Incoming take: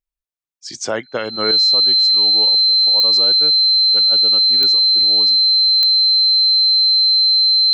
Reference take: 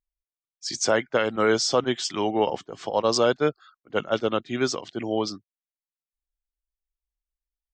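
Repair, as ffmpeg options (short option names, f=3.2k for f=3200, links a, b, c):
-filter_complex "[0:a]adeclick=t=4,bandreject=f=4.1k:w=30,asplit=3[a][b][c];[a]afade=t=out:st=3.73:d=0.02[d];[b]highpass=f=140:w=0.5412,highpass=f=140:w=1.3066,afade=t=in:st=3.73:d=0.02,afade=t=out:st=3.85:d=0.02[e];[c]afade=t=in:st=3.85:d=0.02[f];[d][e][f]amix=inputs=3:normalize=0,asplit=3[g][h][i];[g]afade=t=out:st=4.99:d=0.02[j];[h]highpass=f=140:w=0.5412,highpass=f=140:w=1.3066,afade=t=in:st=4.99:d=0.02,afade=t=out:st=5.11:d=0.02[k];[i]afade=t=in:st=5.11:d=0.02[l];[j][k][l]amix=inputs=3:normalize=0,asplit=3[m][n][o];[m]afade=t=out:st=5.64:d=0.02[p];[n]highpass=f=140:w=0.5412,highpass=f=140:w=1.3066,afade=t=in:st=5.64:d=0.02,afade=t=out:st=5.76:d=0.02[q];[o]afade=t=in:st=5.76:d=0.02[r];[p][q][r]amix=inputs=3:normalize=0,asetnsamples=n=441:p=0,asendcmd='1.51 volume volume 9dB',volume=0dB"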